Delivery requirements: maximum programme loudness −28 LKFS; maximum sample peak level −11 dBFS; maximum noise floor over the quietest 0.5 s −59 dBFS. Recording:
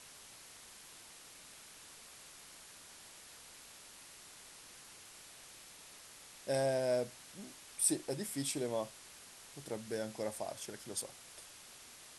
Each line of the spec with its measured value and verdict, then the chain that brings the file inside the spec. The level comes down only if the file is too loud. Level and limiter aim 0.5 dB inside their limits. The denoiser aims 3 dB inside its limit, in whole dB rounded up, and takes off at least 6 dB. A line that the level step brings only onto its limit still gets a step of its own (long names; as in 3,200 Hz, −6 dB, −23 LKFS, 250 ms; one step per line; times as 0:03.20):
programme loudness −38.0 LKFS: in spec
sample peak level −16.5 dBFS: in spec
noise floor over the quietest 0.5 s −56 dBFS: out of spec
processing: broadband denoise 6 dB, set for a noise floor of −56 dBFS